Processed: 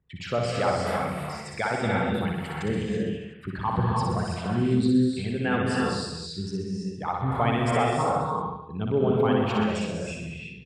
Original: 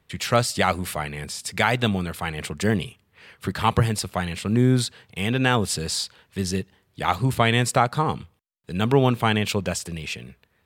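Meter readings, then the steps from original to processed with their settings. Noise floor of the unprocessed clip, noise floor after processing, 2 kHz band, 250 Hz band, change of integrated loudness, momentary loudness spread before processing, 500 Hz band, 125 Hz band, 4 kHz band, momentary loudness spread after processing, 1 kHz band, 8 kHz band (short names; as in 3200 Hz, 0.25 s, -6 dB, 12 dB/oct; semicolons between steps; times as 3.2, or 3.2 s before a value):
-67 dBFS, -42 dBFS, -5.5 dB, -0.5 dB, -3.0 dB, 11 LU, -1.0 dB, -4.0 dB, -8.5 dB, 11 LU, -2.0 dB, -12.5 dB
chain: formant sharpening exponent 2; LPF 2800 Hz 6 dB/oct; on a send: reverse bouncing-ball echo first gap 60 ms, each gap 1.1×, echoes 5; on the sum: non-linear reverb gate 0.36 s rising, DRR -1 dB; gain -7.5 dB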